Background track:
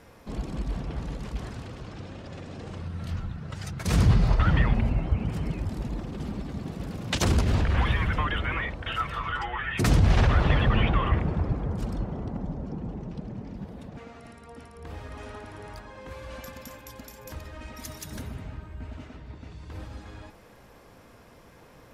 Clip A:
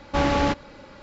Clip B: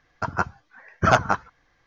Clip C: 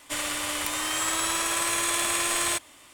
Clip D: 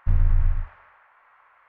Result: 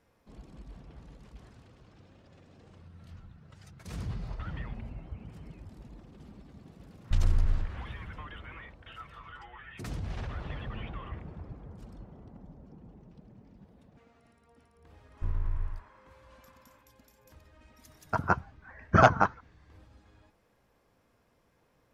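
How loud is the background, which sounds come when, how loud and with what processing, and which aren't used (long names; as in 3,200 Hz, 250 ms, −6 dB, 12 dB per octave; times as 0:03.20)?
background track −17 dB
0:07.04: mix in D −6 dB
0:15.15: mix in D −12 dB + hollow resonant body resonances 350/1,000 Hz, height 13 dB, ringing for 40 ms
0:17.91: mix in B −0.5 dB + high-shelf EQ 2,500 Hz −9.5 dB
not used: A, C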